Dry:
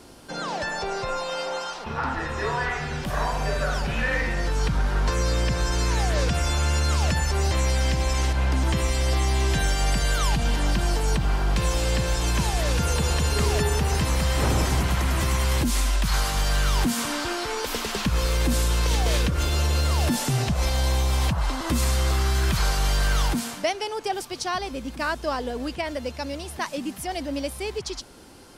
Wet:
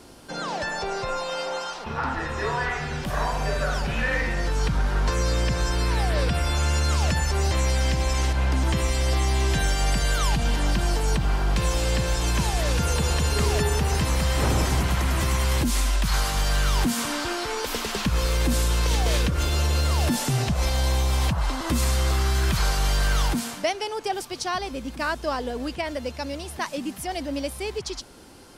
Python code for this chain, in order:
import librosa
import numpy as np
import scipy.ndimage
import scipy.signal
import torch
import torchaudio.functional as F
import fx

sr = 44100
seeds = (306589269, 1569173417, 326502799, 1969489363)

y = fx.peak_eq(x, sr, hz=6600.0, db=-14.0, octaves=0.25, at=(5.72, 6.55))